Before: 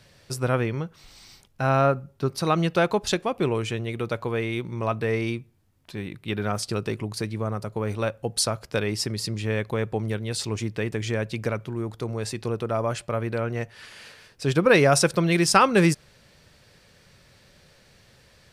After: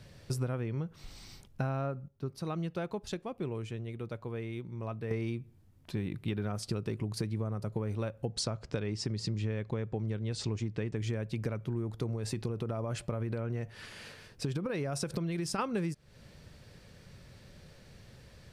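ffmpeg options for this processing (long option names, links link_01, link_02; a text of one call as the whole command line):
ffmpeg -i in.wav -filter_complex "[0:a]asettb=1/sr,asplit=3[link_01][link_02][link_03];[link_01]atrim=end=8.254[link_04];[link_02]atrim=start=8.25:end=10.96,asetpts=PTS-STARTPTS,afade=type=in:duration=0.004:curve=qsin,afade=type=out:start_time=2.706:duration=0.004:curve=qsin,lowpass=frequency=7800:width=0.5412,lowpass=frequency=7800:width=1.3066[link_05];[link_03]atrim=start=10.956[link_06];[link_04][link_05]acrossfade=duration=0.004:curve1=hsin:curve2=qsin[link_07];[link_07][link_06]acrossfade=duration=0.004:curve1=qsin:curve2=hsin,asplit=3[link_08][link_09][link_10];[link_08]afade=type=out:start_time=12.15:duration=0.02[link_11];[link_09]acompressor=threshold=-26dB:ratio=6:attack=3.2:release=140:knee=1:detection=peak,afade=type=in:start_time=12.15:duration=0.02,afade=type=out:start_time=15.58:duration=0.02[link_12];[link_10]afade=type=in:start_time=15.58:duration=0.02[link_13];[link_11][link_12][link_13]amix=inputs=3:normalize=0,asplit=3[link_14][link_15][link_16];[link_14]atrim=end=2.08,asetpts=PTS-STARTPTS,afade=type=out:start_time=1.94:duration=0.14:curve=log:silence=0.223872[link_17];[link_15]atrim=start=2.08:end=5.11,asetpts=PTS-STARTPTS,volume=-13dB[link_18];[link_16]atrim=start=5.11,asetpts=PTS-STARTPTS,afade=type=in:duration=0.14:curve=log:silence=0.223872[link_19];[link_17][link_18][link_19]concat=n=3:v=0:a=1,lowshelf=frequency=420:gain=9.5,acompressor=threshold=-26dB:ratio=12,volume=-4dB" out.wav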